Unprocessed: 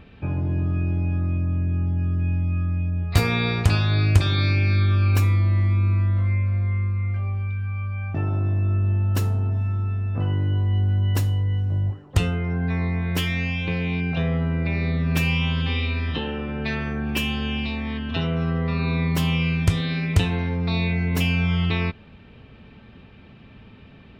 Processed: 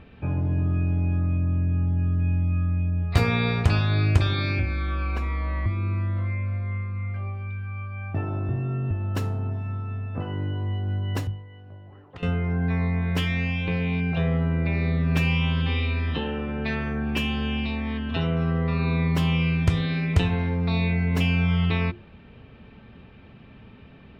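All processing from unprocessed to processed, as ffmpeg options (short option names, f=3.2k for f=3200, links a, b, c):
-filter_complex "[0:a]asettb=1/sr,asplit=3[a][b][c];[a]atrim=end=4.594[d];[b]atrim=start=4.59:end=5.66,asetpts=PTS-STARTPTS,afade=t=in:d=0.004:c=qsin,afade=t=out:st=1.066:d=0.004:c=qsin,acrossover=split=110|480[e][f][g];[e]acompressor=threshold=-25dB:ratio=4[h];[f]acompressor=threshold=-30dB:ratio=4[i];[g]acompressor=threshold=-37dB:ratio=4[j];[h][i][j]amix=inputs=3:normalize=0,asplit=2[k][l];[l]highpass=f=720:p=1,volume=15dB,asoftclip=type=tanh:threshold=-14dB[m];[k][m]amix=inputs=2:normalize=0,lowpass=f=1.4k:p=1,volume=-6dB,afreqshift=-31[n];[c]atrim=start=5.656[o];[d][n]acrossfade=d=0.004:c1=hsin:c2=qsin[p];[p][o]acrossfade=d=0.004:c1=qsin:c2=hsin,asettb=1/sr,asplit=3[q][r][s];[q]atrim=end=8.494[t];[r]atrim=start=8.49:end=8.91,asetpts=PTS-STARTPTS,afade=t=in:d=0.004:c=qsin,afade=t=out:st=0.416:d=0.004:c=qsin,equalizer=f=77:t=o:w=1.5:g=-8,afreqshift=32[u];[s]atrim=start=8.906[v];[t][u]acrossfade=d=0.004:c1=hsin:c2=qsin[w];[w][v]acrossfade=d=0.004:c1=qsin:c2=hsin,asettb=1/sr,asplit=3[x][y][z];[x]atrim=end=11.274[aa];[y]atrim=start=11.27:end=12.23,asetpts=PTS-STARTPTS,afade=t=in:d=0.004:c=qsin,afade=t=out:st=0.956:d=0.004:c=qsin,lowpass=3.5k,lowshelf=f=250:g=-12,acompressor=threshold=-37dB:ratio=6:attack=3.2:release=140:knee=1:detection=peak[ab];[z]atrim=start=12.226[ac];[aa][ab]acrossfade=d=0.004:c1=hsin:c2=qsin[ad];[ad][ac]acrossfade=d=0.004:c1=qsin:c2=hsin,lowpass=f=3k:p=1,bandreject=f=50:t=h:w=6,bandreject=f=100:t=h:w=6,bandreject=f=150:t=h:w=6,bandreject=f=200:t=h:w=6,bandreject=f=250:t=h:w=6,bandreject=f=300:t=h:w=6,bandreject=f=350:t=h:w=6"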